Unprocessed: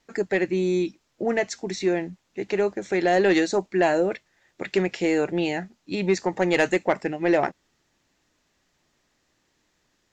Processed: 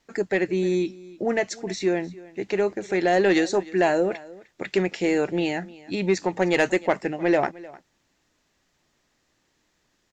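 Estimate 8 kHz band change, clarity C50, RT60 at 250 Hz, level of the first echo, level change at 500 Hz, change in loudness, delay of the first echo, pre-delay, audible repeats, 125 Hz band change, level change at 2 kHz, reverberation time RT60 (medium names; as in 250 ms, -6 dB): no reading, no reverb, no reverb, -20.5 dB, 0.0 dB, 0.0 dB, 305 ms, no reverb, 1, 0.0 dB, 0.0 dB, no reverb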